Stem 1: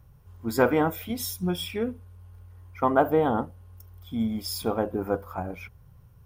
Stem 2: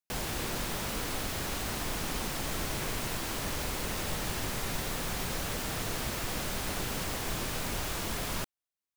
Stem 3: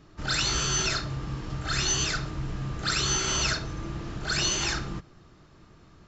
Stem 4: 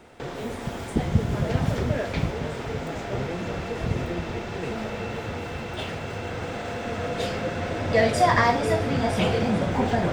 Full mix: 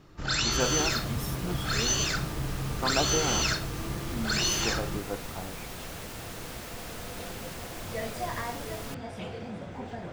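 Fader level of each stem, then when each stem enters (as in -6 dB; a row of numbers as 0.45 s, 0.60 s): -8.5 dB, -6.5 dB, -1.0 dB, -15.5 dB; 0.00 s, 0.50 s, 0.00 s, 0.00 s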